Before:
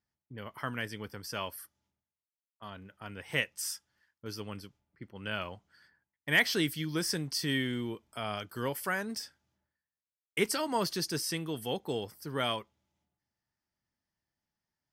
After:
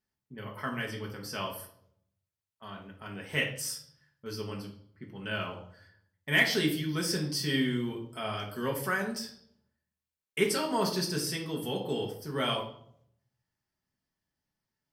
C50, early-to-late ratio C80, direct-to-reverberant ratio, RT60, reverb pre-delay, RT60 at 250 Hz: 8.0 dB, 12.0 dB, −1.0 dB, 0.65 s, 5 ms, 0.75 s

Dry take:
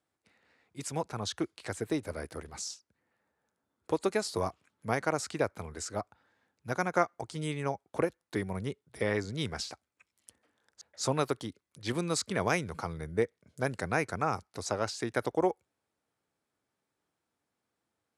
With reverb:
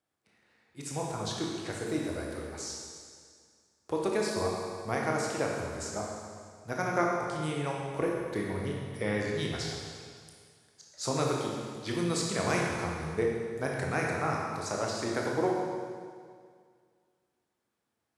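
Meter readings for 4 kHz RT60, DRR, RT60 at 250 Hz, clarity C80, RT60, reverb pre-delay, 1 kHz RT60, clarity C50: 2.0 s, −2.0 dB, 2.0 s, 1.5 dB, 2.0 s, 17 ms, 2.0 s, −0.5 dB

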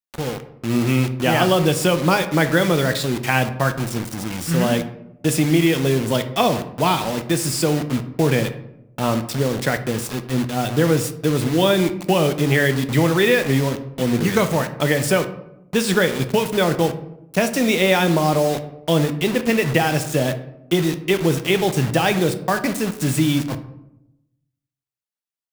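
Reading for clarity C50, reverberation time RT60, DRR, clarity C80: 12.0 dB, 0.85 s, 9.0 dB, 15.0 dB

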